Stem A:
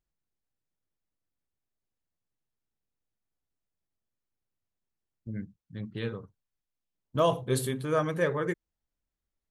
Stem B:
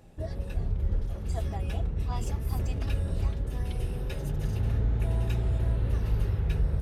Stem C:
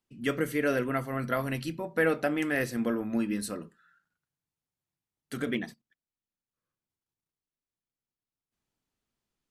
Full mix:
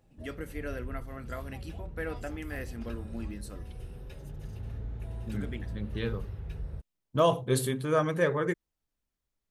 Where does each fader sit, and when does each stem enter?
+1.0, -11.5, -11.0 dB; 0.00, 0.00, 0.00 s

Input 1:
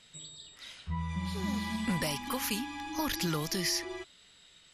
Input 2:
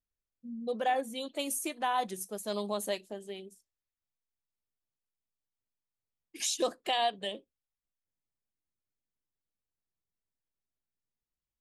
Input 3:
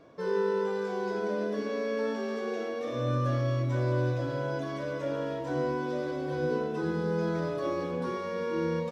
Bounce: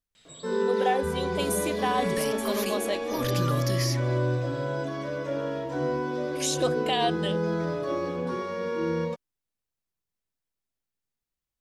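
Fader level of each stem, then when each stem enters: -1.0, +3.0, +2.0 dB; 0.15, 0.00, 0.25 s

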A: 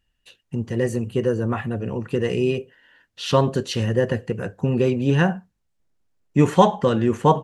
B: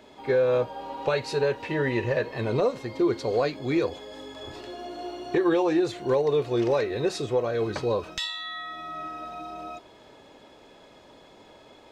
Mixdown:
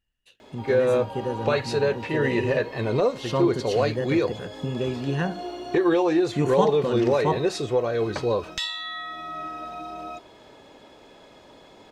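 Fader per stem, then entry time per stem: -8.0, +2.0 dB; 0.00, 0.40 s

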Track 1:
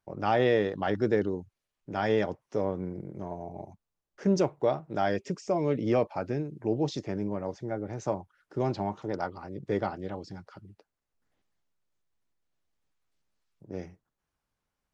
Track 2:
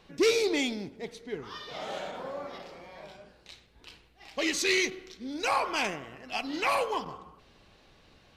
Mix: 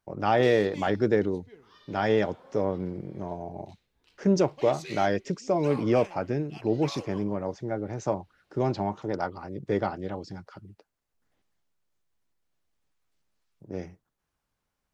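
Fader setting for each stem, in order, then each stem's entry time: +2.5, -15.0 dB; 0.00, 0.20 s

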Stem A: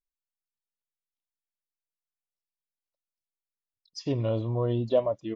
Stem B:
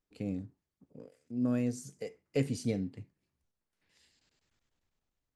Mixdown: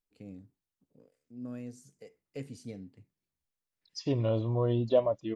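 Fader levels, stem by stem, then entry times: -1.0, -10.5 dB; 0.00, 0.00 s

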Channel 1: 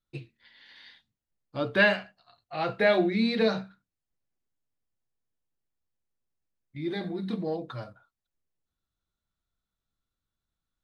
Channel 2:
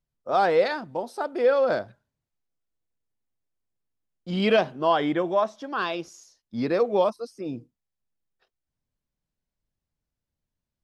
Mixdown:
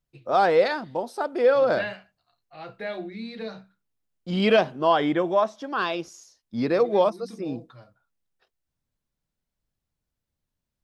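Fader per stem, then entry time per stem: -10.5, +1.5 dB; 0.00, 0.00 s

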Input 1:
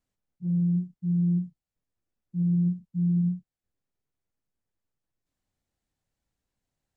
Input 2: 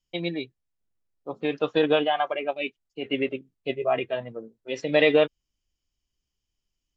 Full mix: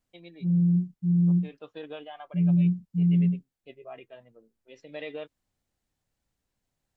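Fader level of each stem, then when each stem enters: +2.5, -19.0 dB; 0.00, 0.00 s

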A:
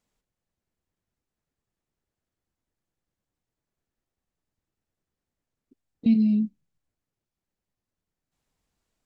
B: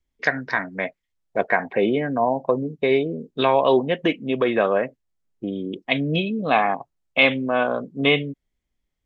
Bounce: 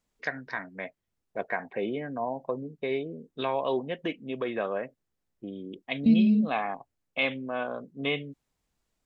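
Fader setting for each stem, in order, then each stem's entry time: -0.5, -11.0 dB; 0.00, 0.00 s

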